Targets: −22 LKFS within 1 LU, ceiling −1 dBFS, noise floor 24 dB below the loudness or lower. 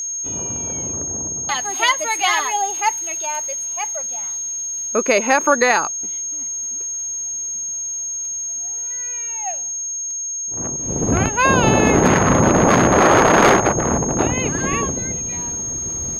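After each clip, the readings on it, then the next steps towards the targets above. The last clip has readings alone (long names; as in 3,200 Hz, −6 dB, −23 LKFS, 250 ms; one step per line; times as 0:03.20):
interfering tone 6,500 Hz; level of the tone −23 dBFS; integrated loudness −18.5 LKFS; sample peak −2.0 dBFS; target loudness −22.0 LKFS
→ notch filter 6,500 Hz, Q 30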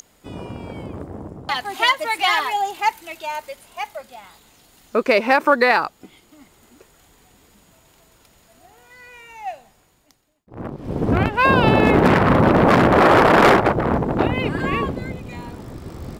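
interfering tone none found; integrated loudness −17.0 LKFS; sample peak −2.5 dBFS; target loudness −22.0 LKFS
→ level −5 dB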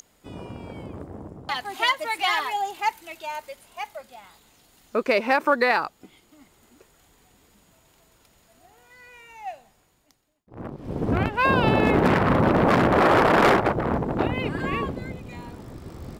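integrated loudness −22.0 LKFS; sample peak −7.5 dBFS; background noise floor −62 dBFS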